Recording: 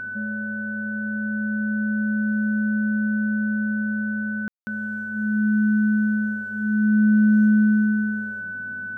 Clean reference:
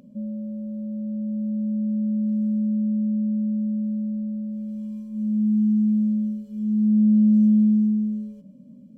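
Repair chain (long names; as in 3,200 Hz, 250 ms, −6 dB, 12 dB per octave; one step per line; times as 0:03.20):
hum removal 101.4 Hz, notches 7
notch filter 1,500 Hz, Q 30
ambience match 0:04.48–0:04.67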